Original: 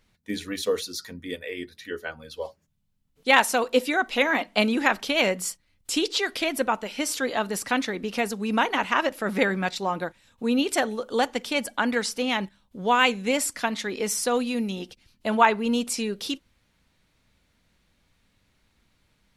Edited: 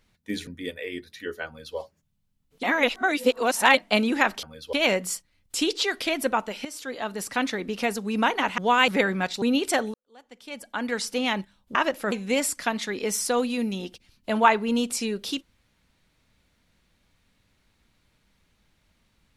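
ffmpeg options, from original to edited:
ffmpeg -i in.wav -filter_complex "[0:a]asplit=13[link_01][link_02][link_03][link_04][link_05][link_06][link_07][link_08][link_09][link_10][link_11][link_12][link_13];[link_01]atrim=end=0.472[link_14];[link_02]atrim=start=1.118:end=3.282[link_15];[link_03]atrim=start=3.278:end=4.422,asetpts=PTS-STARTPTS,areverse[link_16];[link_04]atrim=start=4.418:end=5.082[link_17];[link_05]atrim=start=2.118:end=2.422[link_18];[link_06]atrim=start=5.078:end=7,asetpts=PTS-STARTPTS,afade=type=out:start_time=1.918:duration=0.004:curve=hsin:silence=0.223872[link_19];[link_07]atrim=start=7:end=8.932,asetpts=PTS-STARTPTS,afade=type=in:duration=0.9:silence=0.223872[link_20];[link_08]atrim=start=12.788:end=13.092[link_21];[link_09]atrim=start=9.298:end=9.842[link_22];[link_10]atrim=start=10.458:end=10.98,asetpts=PTS-STARTPTS,afade=type=out:start_time=0.518:duration=0.004:curve=hsin[link_23];[link_11]atrim=start=10.98:end=12.792,asetpts=PTS-STARTPTS,afade=type=in:duration=1.17:curve=qua[link_24];[link_12]atrim=start=8.928:end=9.302[link_25];[link_13]atrim=start=13.088[link_26];[link_14][link_15]acrossfade=duration=0.004:curve1=hsin:curve2=hsin[link_27];[link_27][link_16]acrossfade=duration=0.004:curve1=hsin:curve2=hsin[link_28];[link_28][link_17]acrossfade=duration=0.004:curve1=hsin:curve2=hsin[link_29];[link_29][link_18]acrossfade=duration=0.004:curve1=hsin:curve2=hsin[link_30];[link_19][link_20]concat=n=2:v=0:a=1[link_31];[link_30][link_31]acrossfade=duration=0.004:curve1=hsin:curve2=hsin[link_32];[link_32][link_21]acrossfade=duration=0.004:curve1=hsin:curve2=hsin[link_33];[link_33][link_22]acrossfade=duration=0.004:curve1=hsin:curve2=hsin[link_34];[link_23][link_24]concat=n=2:v=0:a=1[link_35];[link_34][link_35]acrossfade=duration=0.004:curve1=hsin:curve2=hsin[link_36];[link_36][link_25]acrossfade=duration=0.004:curve1=hsin:curve2=hsin[link_37];[link_37][link_26]acrossfade=duration=0.004:curve1=hsin:curve2=hsin" out.wav

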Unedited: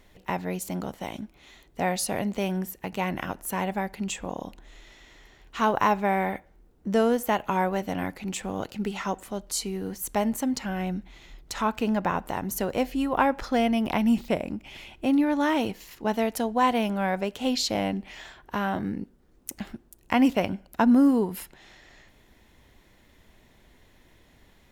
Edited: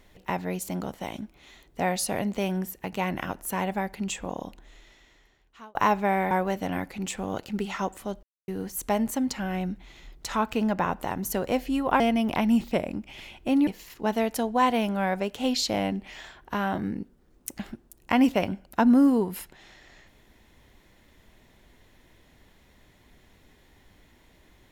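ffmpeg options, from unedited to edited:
ffmpeg -i in.wav -filter_complex "[0:a]asplit=7[link_01][link_02][link_03][link_04][link_05][link_06][link_07];[link_01]atrim=end=5.75,asetpts=PTS-STARTPTS,afade=type=out:start_time=4.39:duration=1.36[link_08];[link_02]atrim=start=5.75:end=6.312,asetpts=PTS-STARTPTS,afade=type=in:duration=0.004:curve=hsin[link_09];[link_03]atrim=start=7.568:end=9.49,asetpts=PTS-STARTPTS,afade=type=out:start_time=1.918:duration=0.004:curve=hsin[link_10];[link_04]atrim=start=9.49:end=9.74,asetpts=PTS-STARTPTS,volume=0[link_11];[link_05]atrim=start=9.74:end=13.262,asetpts=PTS-STARTPTS,afade=type=in:duration=0.004:curve=hsin[link_12];[link_06]atrim=start=13.568:end=15.242[link_13];[link_07]atrim=start=15.678[link_14];[link_08][link_09]concat=n=2:v=0:a=1[link_15];[link_10][link_11][link_12]concat=n=3:v=0:a=1[link_16];[link_15][link_16]acrossfade=duration=0.004:curve1=hsin:curve2=hsin[link_17];[link_17][link_13]acrossfade=duration=0.004:curve1=hsin:curve2=hsin[link_18];[link_18][link_14]acrossfade=duration=0.004:curve1=hsin:curve2=hsin" out.wav

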